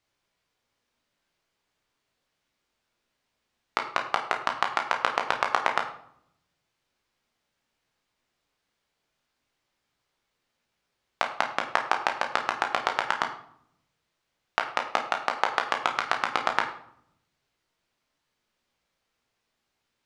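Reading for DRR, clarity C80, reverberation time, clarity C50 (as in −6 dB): 2.0 dB, 12.0 dB, 0.65 s, 9.0 dB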